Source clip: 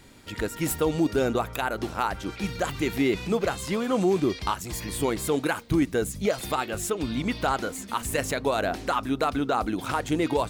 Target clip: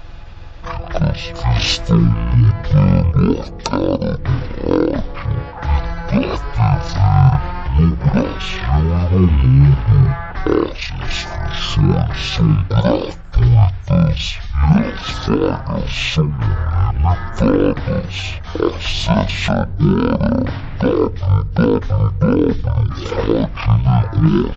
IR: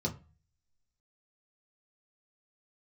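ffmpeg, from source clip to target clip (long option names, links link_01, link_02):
-filter_complex "[0:a]asplit=2[link_01][link_02];[1:a]atrim=start_sample=2205,asetrate=74970,aresample=44100[link_03];[link_02][link_03]afir=irnorm=-1:irlink=0,volume=-21dB[link_04];[link_01][link_04]amix=inputs=2:normalize=0,asetrate=37084,aresample=44100,atempo=1.18921,acontrast=90,aeval=exprs='val(0)+0.0158*(sin(2*PI*50*n/s)+sin(2*PI*2*50*n/s)/2+sin(2*PI*3*50*n/s)/3+sin(2*PI*4*50*n/s)/4+sin(2*PI*5*50*n/s)/5)':channel_layout=same,asetrate=18846,aresample=44100,volume=4.5dB"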